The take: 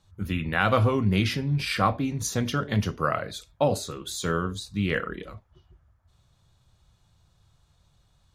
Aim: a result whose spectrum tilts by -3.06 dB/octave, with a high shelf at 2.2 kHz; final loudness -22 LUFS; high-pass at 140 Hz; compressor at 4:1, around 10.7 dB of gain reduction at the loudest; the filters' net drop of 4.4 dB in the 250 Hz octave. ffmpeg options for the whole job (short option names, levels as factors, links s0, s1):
-af "highpass=140,equalizer=f=250:t=o:g=-5,highshelf=f=2200:g=8.5,acompressor=threshold=0.0316:ratio=4,volume=3.55"